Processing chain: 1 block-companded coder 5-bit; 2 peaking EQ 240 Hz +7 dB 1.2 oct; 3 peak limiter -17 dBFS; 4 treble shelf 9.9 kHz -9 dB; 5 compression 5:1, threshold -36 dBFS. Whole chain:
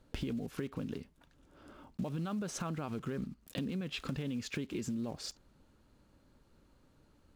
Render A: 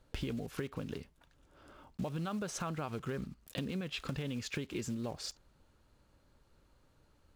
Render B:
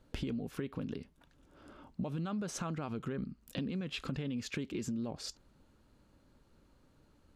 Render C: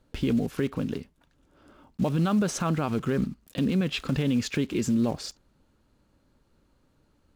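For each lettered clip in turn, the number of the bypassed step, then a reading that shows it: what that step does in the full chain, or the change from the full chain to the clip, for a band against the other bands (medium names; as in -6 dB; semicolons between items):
2, 250 Hz band -3.0 dB; 1, distortion -23 dB; 5, mean gain reduction 9.5 dB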